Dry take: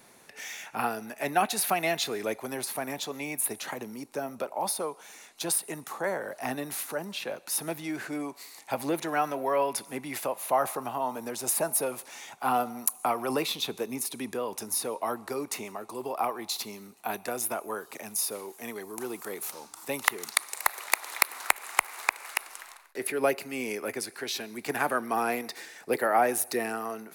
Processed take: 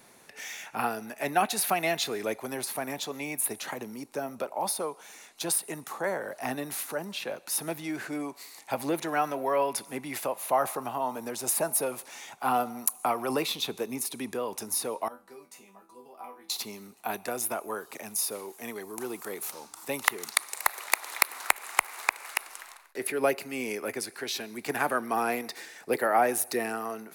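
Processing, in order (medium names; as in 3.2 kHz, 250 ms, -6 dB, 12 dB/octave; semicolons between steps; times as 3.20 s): 15.08–16.50 s: chord resonator E3 minor, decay 0.28 s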